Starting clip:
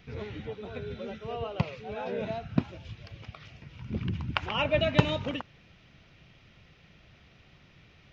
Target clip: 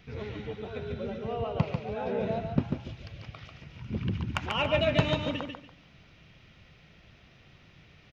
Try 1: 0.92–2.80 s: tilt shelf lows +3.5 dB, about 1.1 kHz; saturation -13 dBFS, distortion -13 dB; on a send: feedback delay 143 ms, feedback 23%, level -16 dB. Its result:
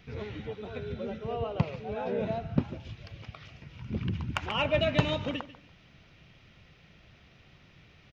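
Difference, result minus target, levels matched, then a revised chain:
echo-to-direct -10.5 dB
0.92–2.80 s: tilt shelf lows +3.5 dB, about 1.1 kHz; saturation -13 dBFS, distortion -13 dB; on a send: feedback delay 143 ms, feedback 23%, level -5.5 dB

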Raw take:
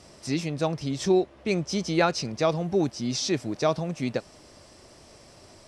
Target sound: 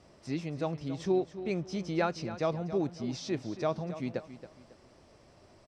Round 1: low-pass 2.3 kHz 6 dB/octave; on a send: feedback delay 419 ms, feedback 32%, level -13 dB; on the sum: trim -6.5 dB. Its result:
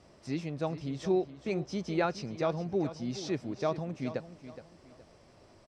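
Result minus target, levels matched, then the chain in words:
echo 144 ms late
low-pass 2.3 kHz 6 dB/octave; on a send: feedback delay 275 ms, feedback 32%, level -13 dB; on the sum: trim -6.5 dB

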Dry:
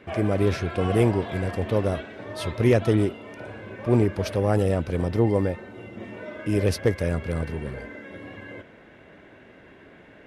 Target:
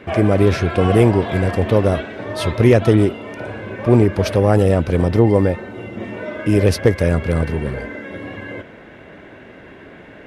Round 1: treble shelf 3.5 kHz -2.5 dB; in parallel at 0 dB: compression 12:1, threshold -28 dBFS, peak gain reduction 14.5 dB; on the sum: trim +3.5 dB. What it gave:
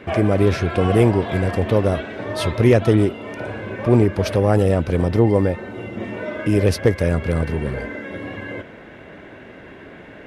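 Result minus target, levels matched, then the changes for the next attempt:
compression: peak gain reduction +8 dB
change: compression 12:1, threshold -19.5 dBFS, peak gain reduction 6.5 dB

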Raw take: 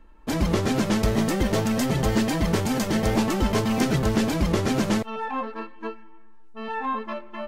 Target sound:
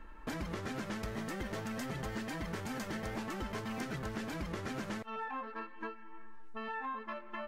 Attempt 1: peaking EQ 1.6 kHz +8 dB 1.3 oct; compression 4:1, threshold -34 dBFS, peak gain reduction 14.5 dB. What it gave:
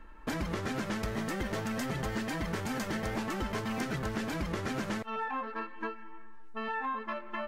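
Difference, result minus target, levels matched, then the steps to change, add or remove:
compression: peak gain reduction -5 dB
change: compression 4:1, threshold -41 dBFS, peak gain reduction 20 dB

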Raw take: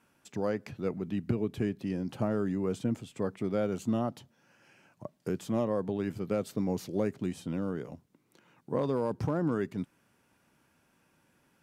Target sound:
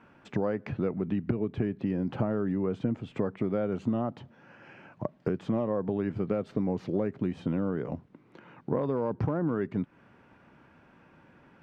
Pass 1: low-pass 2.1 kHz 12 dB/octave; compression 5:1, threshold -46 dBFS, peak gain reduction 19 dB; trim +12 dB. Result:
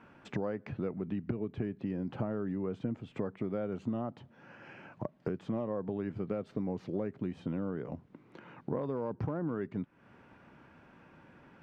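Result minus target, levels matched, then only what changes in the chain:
compression: peak gain reduction +6 dB
change: compression 5:1, threshold -38.5 dBFS, peak gain reduction 13 dB

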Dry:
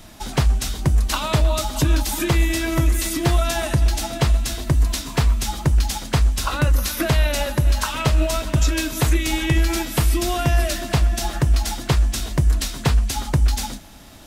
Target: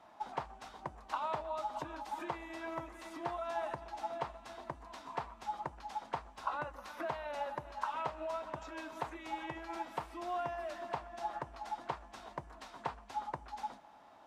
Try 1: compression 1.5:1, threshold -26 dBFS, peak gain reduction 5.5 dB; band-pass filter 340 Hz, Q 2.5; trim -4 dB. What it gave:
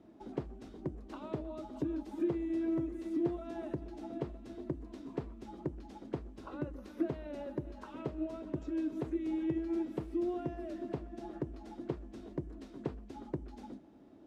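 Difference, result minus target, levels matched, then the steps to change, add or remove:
1 kHz band -15.5 dB
change: band-pass filter 890 Hz, Q 2.5

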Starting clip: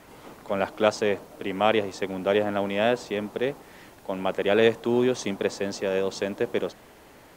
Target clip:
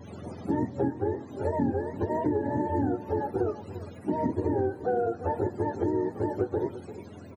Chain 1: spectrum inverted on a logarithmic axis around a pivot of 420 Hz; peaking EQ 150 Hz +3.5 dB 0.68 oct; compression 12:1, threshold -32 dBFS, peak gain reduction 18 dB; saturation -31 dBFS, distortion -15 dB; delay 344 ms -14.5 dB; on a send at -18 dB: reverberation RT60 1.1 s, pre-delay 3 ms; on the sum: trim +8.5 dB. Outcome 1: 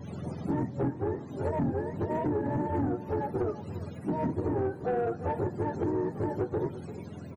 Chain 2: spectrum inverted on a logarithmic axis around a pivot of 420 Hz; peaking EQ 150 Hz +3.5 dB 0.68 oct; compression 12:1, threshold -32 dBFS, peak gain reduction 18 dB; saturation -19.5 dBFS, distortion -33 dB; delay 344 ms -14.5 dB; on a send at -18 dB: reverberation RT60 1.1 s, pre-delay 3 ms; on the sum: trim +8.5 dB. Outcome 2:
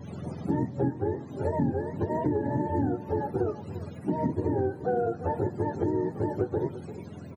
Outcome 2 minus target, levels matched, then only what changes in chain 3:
125 Hz band +3.0 dB
change: peaking EQ 150 Hz -6.5 dB 0.68 oct

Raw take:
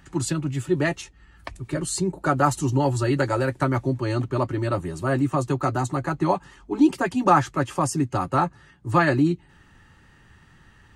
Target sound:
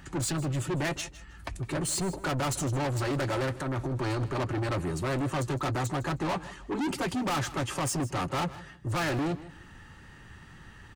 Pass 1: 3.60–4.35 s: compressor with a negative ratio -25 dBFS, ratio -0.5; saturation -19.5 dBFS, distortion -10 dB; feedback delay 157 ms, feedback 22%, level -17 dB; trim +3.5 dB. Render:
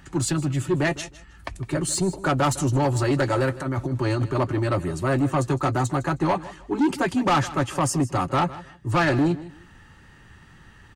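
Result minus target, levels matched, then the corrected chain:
saturation: distortion -6 dB
3.60–4.35 s: compressor with a negative ratio -25 dBFS, ratio -0.5; saturation -31 dBFS, distortion -3 dB; feedback delay 157 ms, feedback 22%, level -17 dB; trim +3.5 dB

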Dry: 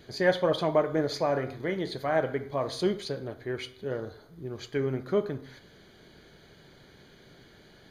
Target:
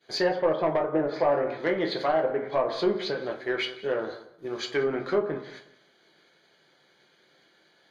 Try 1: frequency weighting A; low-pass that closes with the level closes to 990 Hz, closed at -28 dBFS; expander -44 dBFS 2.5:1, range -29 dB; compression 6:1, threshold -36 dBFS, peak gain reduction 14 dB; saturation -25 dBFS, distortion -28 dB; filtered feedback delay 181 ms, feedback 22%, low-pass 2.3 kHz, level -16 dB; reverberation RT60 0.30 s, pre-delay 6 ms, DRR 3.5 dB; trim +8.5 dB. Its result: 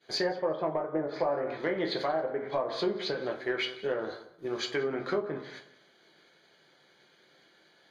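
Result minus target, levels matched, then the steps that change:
compression: peak gain reduction +8 dB
change: compression 6:1, threshold -26.5 dBFS, peak gain reduction 6 dB

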